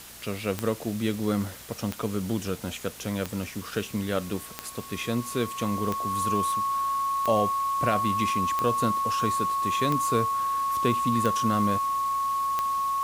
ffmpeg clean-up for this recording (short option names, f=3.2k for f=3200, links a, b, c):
-af "adeclick=t=4,bandreject=f=60.1:t=h:w=4,bandreject=f=120.2:t=h:w=4,bandreject=f=180.3:t=h:w=4,bandreject=f=240.4:t=h:w=4,bandreject=f=1.1k:w=30,afwtdn=0.0063"